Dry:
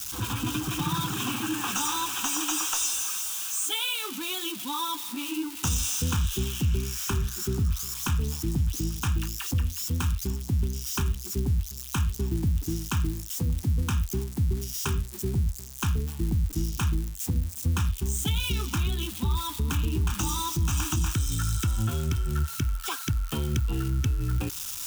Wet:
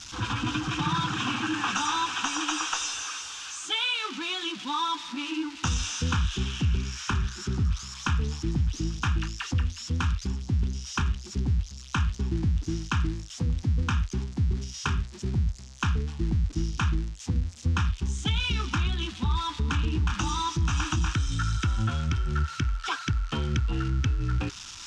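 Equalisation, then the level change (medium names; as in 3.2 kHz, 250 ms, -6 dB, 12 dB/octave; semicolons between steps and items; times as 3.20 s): low-pass 5.9 kHz 24 dB/octave; band-stop 390 Hz, Q 12; dynamic bell 1.6 kHz, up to +6 dB, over -48 dBFS, Q 1; 0.0 dB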